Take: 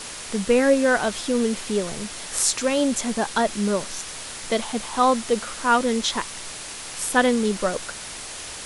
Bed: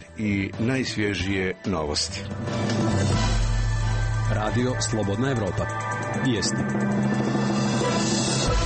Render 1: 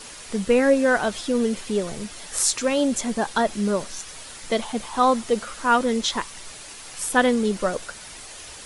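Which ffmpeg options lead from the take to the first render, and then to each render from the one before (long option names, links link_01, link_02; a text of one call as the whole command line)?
ffmpeg -i in.wav -af "afftdn=noise_reduction=7:noise_floor=-36" out.wav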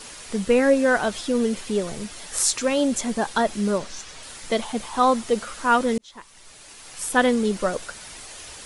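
ffmpeg -i in.wav -filter_complex "[0:a]asettb=1/sr,asplit=3[link_01][link_02][link_03];[link_01]atrim=end=3.784[link_04];[link_02]atrim=start=3.78:end=4.23,asetpts=PTS-STARTPTS,afade=type=in:duration=0.004:curve=qsin,afade=type=out:start_time=0.446:duration=0.004:curve=qsin,lowpass=6900[link_05];[link_03]atrim=start=4.226[link_06];[link_04][link_05]acrossfade=duration=0.004:curve1=hsin:curve2=qsin[link_07];[link_07][link_06]acrossfade=duration=0.004:curve1=qsin:curve2=hsin,asplit=2[link_08][link_09];[link_08]atrim=end=5.98,asetpts=PTS-STARTPTS,afade=type=out:start_time=5.976:duration=0.004:curve=hsin[link_10];[link_09]atrim=start=5.98,asetpts=PTS-STARTPTS,afade=type=in:duration=1.25[link_11];[link_10][link_11]concat=n=2:v=0:a=1" out.wav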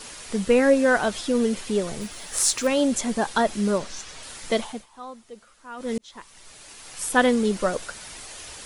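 ffmpeg -i in.wav -filter_complex "[0:a]asettb=1/sr,asplit=3[link_01][link_02][link_03];[link_01]atrim=end=2.014[link_04];[link_02]atrim=start=2.01:end=2.67,asetpts=PTS-STARTPTS,afade=type=in:duration=0.004:curve=qsin,afade=type=out:start_time=0.656:duration=0.004:curve=qsin,acrusher=bits=5:mode=log:mix=0:aa=0.000001[link_05];[link_03]atrim=start=2.666[link_06];[link_04][link_05]acrossfade=duration=0.004:curve1=hsin:curve2=qsin[link_07];[link_07][link_06]acrossfade=duration=0.004:curve1=qsin:curve2=hsin,asplit=3[link_08][link_09][link_10];[link_08]atrim=end=4.86,asetpts=PTS-STARTPTS,afade=type=out:start_time=4.57:duration=0.29:silence=0.0944061[link_11];[link_09]atrim=start=4.86:end=5.76,asetpts=PTS-STARTPTS,volume=-20.5dB[link_12];[link_10]atrim=start=5.76,asetpts=PTS-STARTPTS,afade=type=in:duration=0.29:silence=0.0944061[link_13];[link_11][link_12][link_13]concat=n=3:v=0:a=1" out.wav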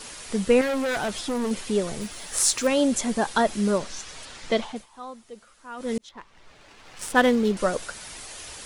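ffmpeg -i in.wav -filter_complex "[0:a]asettb=1/sr,asplit=3[link_01][link_02][link_03];[link_01]atrim=end=0.614[link_04];[link_02]atrim=start=0.61:end=1.51,asetpts=PTS-STARTPTS,afade=type=in:duration=0.004:curve=qsin,afade=type=out:start_time=0.896:duration=0.004:curve=qsin,asoftclip=type=hard:threshold=-24dB[link_05];[link_03]atrim=start=1.506[link_06];[link_04][link_05]acrossfade=duration=0.004:curve1=hsin:curve2=qsin[link_07];[link_07][link_06]acrossfade=duration=0.004:curve1=qsin:curve2=hsin,asettb=1/sr,asplit=3[link_08][link_09][link_10];[link_08]atrim=end=4.254[link_11];[link_09]atrim=start=4.25:end=4.76,asetpts=PTS-STARTPTS,afade=type=in:duration=0.004:curve=qsin,afade=type=out:start_time=0.506:duration=0.004:curve=qsin,lowpass=5500[link_12];[link_10]atrim=start=4.756[link_13];[link_11][link_12]acrossfade=duration=0.004:curve1=hsin:curve2=qsin[link_14];[link_14][link_13]acrossfade=duration=0.004:curve1=qsin:curve2=hsin,asettb=1/sr,asplit=3[link_15][link_16][link_17];[link_15]atrim=end=6.094[link_18];[link_16]atrim=start=6.09:end=7.57,asetpts=PTS-STARTPTS,afade=type=in:duration=0.004:curve=qsin,afade=type=out:start_time=1.476:duration=0.004:curve=qsin,adynamicsmooth=sensitivity=8:basefreq=2500[link_19];[link_17]atrim=start=7.566[link_20];[link_18][link_19]acrossfade=duration=0.004:curve1=hsin:curve2=qsin[link_21];[link_21][link_20]acrossfade=duration=0.004:curve1=qsin:curve2=hsin" out.wav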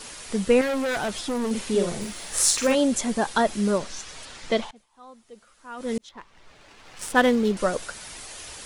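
ffmpeg -i in.wav -filter_complex "[0:a]asettb=1/sr,asplit=3[link_01][link_02][link_03];[link_01]atrim=end=1.504[link_04];[link_02]atrim=start=1.5:end=2.75,asetpts=PTS-STARTPTS,afade=type=in:duration=0.004:curve=qsin,afade=type=out:start_time=1.246:duration=0.004:curve=qsin,asplit=2[link_05][link_06];[link_06]adelay=46,volume=-4dB[link_07];[link_05][link_07]amix=inputs=2:normalize=0,atrim=end_sample=55125[link_08];[link_03]atrim=start=2.746[link_09];[link_04][link_08]acrossfade=duration=0.004:curve1=hsin:curve2=qsin[link_10];[link_10][link_09]acrossfade=duration=0.004:curve1=qsin:curve2=hsin,asplit=2[link_11][link_12];[link_11]atrim=end=4.71,asetpts=PTS-STARTPTS,afade=type=out:start_time=4.706:duration=0.004:curve=hsin:silence=0.0749894[link_13];[link_12]atrim=start=4.71,asetpts=PTS-STARTPTS,afade=type=in:duration=1.02:silence=0.0749894[link_14];[link_13][link_14]concat=n=2:v=0:a=1" out.wav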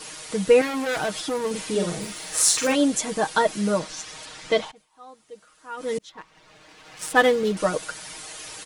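ffmpeg -i in.wav -af "highpass=frequency=92:poles=1,aecho=1:1:6.4:0.72" out.wav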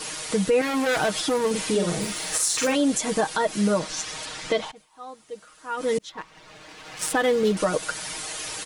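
ffmpeg -i in.wav -filter_complex "[0:a]asplit=2[link_01][link_02];[link_02]acompressor=threshold=-29dB:ratio=6,volume=-1.5dB[link_03];[link_01][link_03]amix=inputs=2:normalize=0,alimiter=limit=-13dB:level=0:latency=1:release=88" out.wav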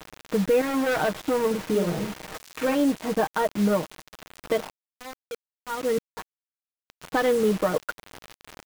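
ffmpeg -i in.wav -af "adynamicsmooth=sensitivity=1:basefreq=1000,acrusher=bits=5:mix=0:aa=0.000001" out.wav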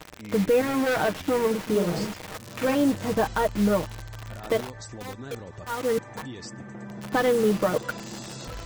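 ffmpeg -i in.wav -i bed.wav -filter_complex "[1:a]volume=-15.5dB[link_01];[0:a][link_01]amix=inputs=2:normalize=0" out.wav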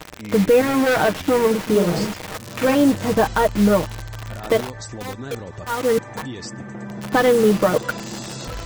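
ffmpeg -i in.wav -af "volume=6.5dB" out.wav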